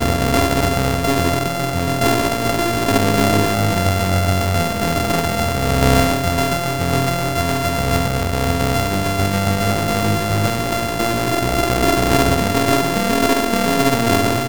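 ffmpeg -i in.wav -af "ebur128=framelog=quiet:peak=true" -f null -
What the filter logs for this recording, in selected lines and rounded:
Integrated loudness:
  I:         -17.3 LUFS
  Threshold: -27.3 LUFS
Loudness range:
  LRA:         1.7 LU
  Threshold: -37.5 LUFS
  LRA low:   -18.4 LUFS
  LRA high:  -16.7 LUFS
True peak:
  Peak:       -0.1 dBFS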